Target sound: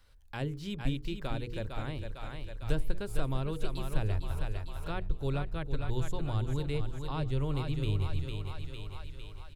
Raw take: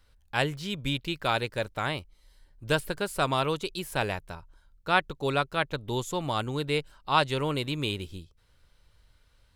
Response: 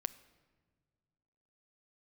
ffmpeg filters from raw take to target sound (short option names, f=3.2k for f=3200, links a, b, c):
-filter_complex "[0:a]bandreject=f=60:t=h:w=6,bandreject=f=120:t=h:w=6,bandreject=f=180:t=h:w=6,bandreject=f=240:t=h:w=6,bandreject=f=300:t=h:w=6,bandreject=f=360:t=h:w=6,bandreject=f=420:t=h:w=6,bandreject=f=480:t=h:w=6,aecho=1:1:453|906|1359|1812|2265:0.398|0.183|0.0842|0.0388|0.0178,acrossover=split=380[a][b];[b]acompressor=threshold=-46dB:ratio=3[c];[a][c]amix=inputs=2:normalize=0,asubboost=boost=11.5:cutoff=62"